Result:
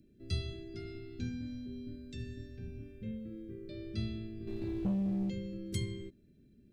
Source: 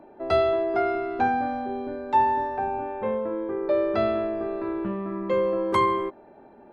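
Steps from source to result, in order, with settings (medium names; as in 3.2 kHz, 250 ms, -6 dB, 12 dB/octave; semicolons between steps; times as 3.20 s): Chebyshev band-stop 130–5800 Hz, order 2; 4.47–5.30 s: waveshaping leveller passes 2; trim +3 dB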